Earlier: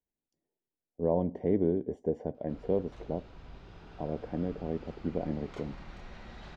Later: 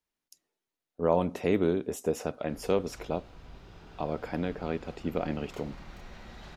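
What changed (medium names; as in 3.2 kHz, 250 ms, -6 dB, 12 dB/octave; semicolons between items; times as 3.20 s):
speech: remove boxcar filter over 34 samples; master: remove distance through air 81 m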